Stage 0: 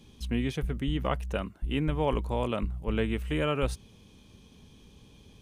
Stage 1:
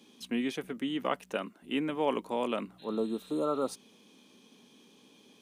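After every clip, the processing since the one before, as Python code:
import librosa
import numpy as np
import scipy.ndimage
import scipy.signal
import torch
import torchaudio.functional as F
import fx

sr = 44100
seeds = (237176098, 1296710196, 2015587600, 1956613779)

y = scipy.signal.sosfilt(scipy.signal.cheby1(3, 1.0, 240.0, 'highpass', fs=sr, output='sos'), x)
y = fx.spec_repair(y, sr, seeds[0], start_s=2.81, length_s=0.9, low_hz=1400.0, high_hz=4200.0, source='after')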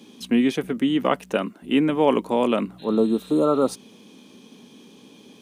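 y = fx.low_shelf(x, sr, hz=440.0, db=6.5)
y = y * librosa.db_to_amplitude(8.0)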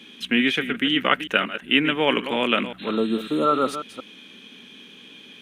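y = fx.reverse_delay(x, sr, ms=182, wet_db=-11.0)
y = fx.band_shelf(y, sr, hz=2200.0, db=14.5, octaves=1.7)
y = y * librosa.db_to_amplitude(-3.5)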